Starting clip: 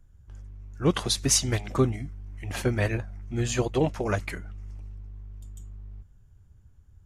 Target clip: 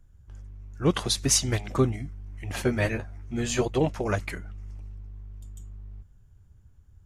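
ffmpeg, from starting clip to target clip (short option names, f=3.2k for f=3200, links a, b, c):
-filter_complex "[0:a]asettb=1/sr,asplit=3[a][b][c];[a]atrim=end=2.644[d];[b]atrim=start=2.64:end=3.65,asetpts=PTS-STARTPTS,afade=t=in:d=0.004:c=qsin,afade=t=out:st=1.006:d=0.004:c=qsin,asplit=2[e][f];[f]adelay=13,volume=-4.5dB[g];[e][g]amix=inputs=2:normalize=0,atrim=end_sample=44541[h];[c]atrim=start=3.646[i];[d][h]acrossfade=d=0.004:c1=hsin:c2=qsin[j];[j][i]acrossfade=d=0.004:c1=qsin:c2=hsin"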